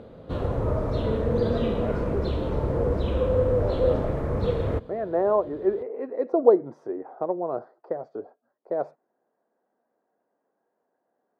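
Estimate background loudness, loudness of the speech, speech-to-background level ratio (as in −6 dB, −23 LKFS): −26.5 LKFS, −28.5 LKFS, −2.0 dB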